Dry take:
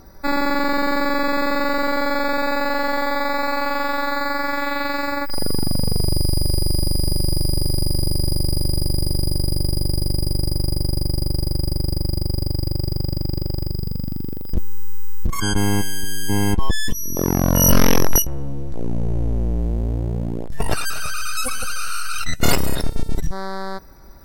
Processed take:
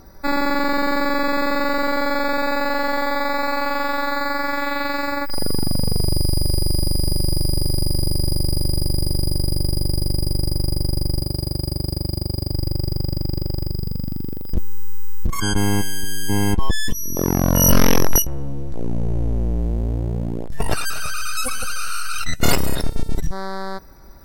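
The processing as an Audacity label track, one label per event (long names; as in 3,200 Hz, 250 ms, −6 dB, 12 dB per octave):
11.210000	12.530000	high-pass filter 62 Hz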